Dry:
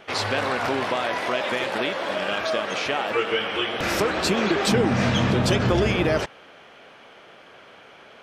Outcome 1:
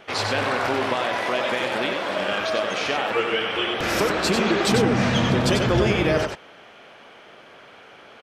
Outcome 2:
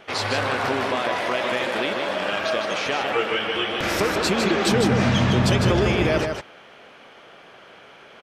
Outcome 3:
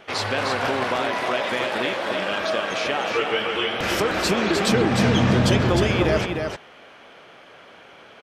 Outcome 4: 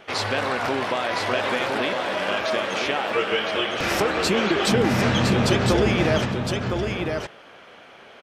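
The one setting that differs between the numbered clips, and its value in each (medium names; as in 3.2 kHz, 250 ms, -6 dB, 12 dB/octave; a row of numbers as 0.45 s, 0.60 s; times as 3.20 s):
delay, time: 94 ms, 154 ms, 306 ms, 1011 ms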